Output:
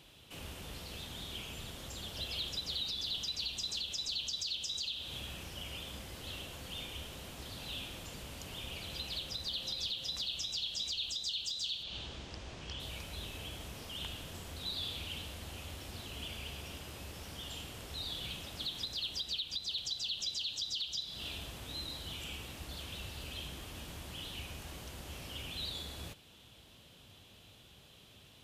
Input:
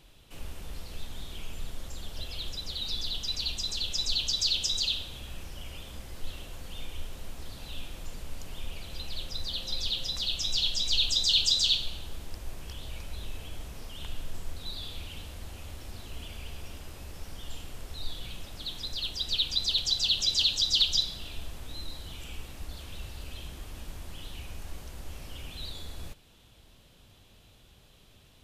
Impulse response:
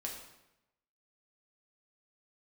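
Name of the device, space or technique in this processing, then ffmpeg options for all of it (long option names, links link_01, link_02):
broadcast voice chain: -filter_complex "[0:a]asettb=1/sr,asplit=3[link_01][link_02][link_03];[link_01]atrim=end=11.834[link_04];[link_02]atrim=start=11.83:end=12.8,asetpts=PTS-STARTPTS,afade=type=in:duration=0.004:curve=qsin,afade=type=out:start_time=0.966:duration=0.004:curve=qsin,lowpass=frequency=6600:width=0.5412,lowpass=frequency=6600:width=1.3066[link_05];[link_03]atrim=start=12.796[link_06];[link_04][link_05]acrossfade=duration=0.004:curve1=hsin:curve2=qsin[link_07];[link_07][link_06]acrossfade=duration=0.004:curve1=qsin:curve2=hsin,highpass=77,deesser=0.45,acompressor=threshold=-35dB:ratio=3,equalizer=frequency=3100:width_type=o:width=0.58:gain=4,alimiter=level_in=3.5dB:limit=-24dB:level=0:latency=1:release=234,volume=-3.5dB"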